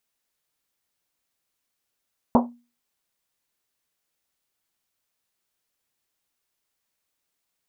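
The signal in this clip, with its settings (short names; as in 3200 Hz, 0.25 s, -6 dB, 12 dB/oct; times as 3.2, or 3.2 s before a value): Risset drum, pitch 240 Hz, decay 0.33 s, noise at 740 Hz, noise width 570 Hz, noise 45%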